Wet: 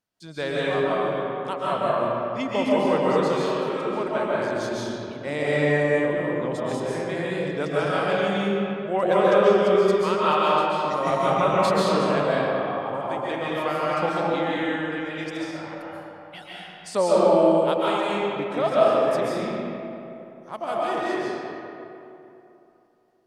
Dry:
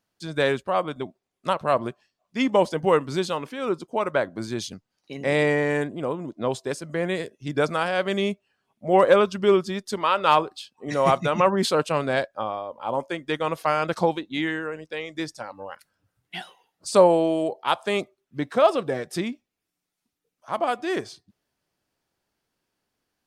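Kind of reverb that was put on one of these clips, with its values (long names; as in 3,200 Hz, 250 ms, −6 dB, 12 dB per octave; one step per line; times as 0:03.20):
comb and all-pass reverb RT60 3 s, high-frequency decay 0.55×, pre-delay 100 ms, DRR −7.5 dB
level −7.5 dB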